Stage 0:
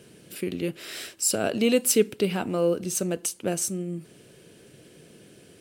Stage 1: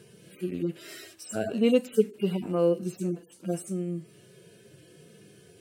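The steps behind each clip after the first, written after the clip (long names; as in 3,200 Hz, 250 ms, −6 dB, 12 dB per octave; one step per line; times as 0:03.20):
harmonic-percussive split with one part muted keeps harmonic
dynamic equaliser 3,600 Hz, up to −4 dB, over −49 dBFS, Q 1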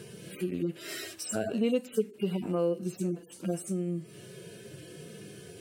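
downward compressor 2 to 1, threshold −42 dBFS, peak gain reduction 14.5 dB
level +7 dB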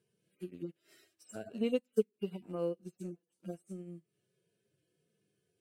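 expander for the loud parts 2.5 to 1, over −44 dBFS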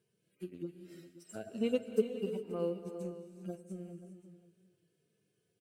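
single-tap delay 532 ms −15.5 dB
reverb whose tail is shaped and stops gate 430 ms rising, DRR 8 dB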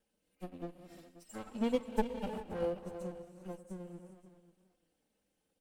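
lower of the sound and its delayed copy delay 3.8 ms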